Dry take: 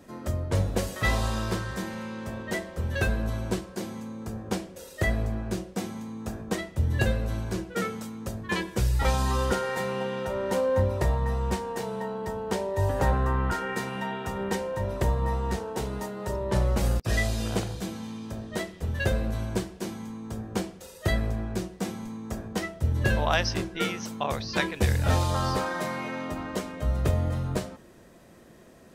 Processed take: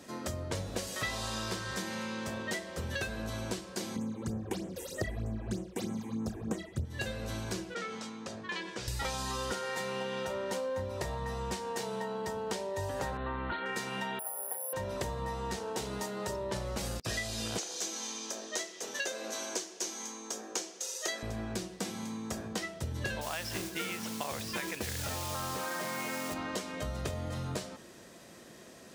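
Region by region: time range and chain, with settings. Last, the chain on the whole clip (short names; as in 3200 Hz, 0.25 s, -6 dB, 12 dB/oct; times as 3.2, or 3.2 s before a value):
3.96–6.85 low shelf 490 Hz +10.5 dB + phaser stages 8, 3.2 Hz, lowest notch 160–4800 Hz
7.74–8.88 HPF 310 Hz 6 dB/oct + compressor 3:1, threshold -36 dBFS + air absorption 94 m
13.17–13.66 Chebyshev low-pass 4300 Hz, order 10 + comb 3.4 ms, depth 35%
14.19–14.73 ladder band-pass 740 Hz, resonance 60% + careless resampling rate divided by 4×, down filtered, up zero stuff
17.58–21.23 HPF 310 Hz 24 dB/oct + bell 6300 Hz +11.5 dB 0.51 oct
23.21–26.34 compressor 4:1, threshold -27 dBFS + polynomial smoothing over 25 samples + modulation noise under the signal 11 dB
whole clip: HPF 150 Hz 6 dB/oct; bell 5400 Hz +8.5 dB 2.3 oct; compressor, threshold -33 dBFS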